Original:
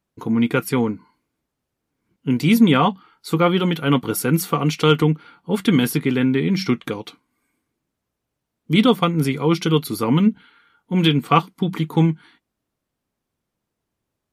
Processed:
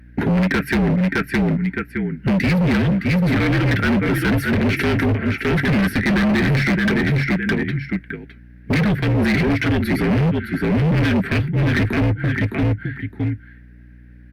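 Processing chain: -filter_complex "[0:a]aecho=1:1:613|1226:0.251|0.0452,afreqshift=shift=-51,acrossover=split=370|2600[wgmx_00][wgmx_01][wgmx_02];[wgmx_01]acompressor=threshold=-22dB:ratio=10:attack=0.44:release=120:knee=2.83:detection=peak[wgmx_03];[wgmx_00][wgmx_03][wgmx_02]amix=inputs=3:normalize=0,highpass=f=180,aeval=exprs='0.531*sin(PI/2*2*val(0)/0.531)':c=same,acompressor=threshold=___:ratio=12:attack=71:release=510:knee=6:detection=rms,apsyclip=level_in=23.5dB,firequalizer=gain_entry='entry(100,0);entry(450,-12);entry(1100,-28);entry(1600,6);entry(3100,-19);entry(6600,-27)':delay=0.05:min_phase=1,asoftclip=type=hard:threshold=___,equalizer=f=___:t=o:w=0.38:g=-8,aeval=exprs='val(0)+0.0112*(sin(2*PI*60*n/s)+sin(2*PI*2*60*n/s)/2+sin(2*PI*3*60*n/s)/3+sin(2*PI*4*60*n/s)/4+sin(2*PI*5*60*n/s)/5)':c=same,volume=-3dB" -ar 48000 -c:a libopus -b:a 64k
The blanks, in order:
-23dB, -12dB, 7.1k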